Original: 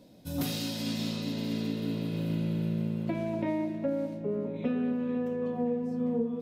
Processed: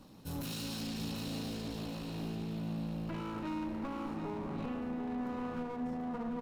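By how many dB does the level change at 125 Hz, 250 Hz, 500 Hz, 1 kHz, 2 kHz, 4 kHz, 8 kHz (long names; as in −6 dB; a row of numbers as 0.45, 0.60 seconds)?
−7.5 dB, −7.0 dB, −10.5 dB, +0.5 dB, −3.5 dB, −5.5 dB, can't be measured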